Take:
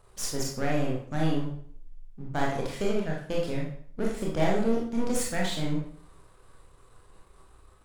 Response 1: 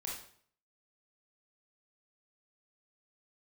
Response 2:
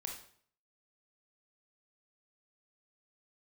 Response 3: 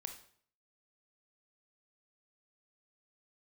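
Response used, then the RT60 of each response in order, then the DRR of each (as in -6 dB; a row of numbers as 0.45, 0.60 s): 1; 0.55, 0.55, 0.55 s; -3.5, 1.0, 5.5 dB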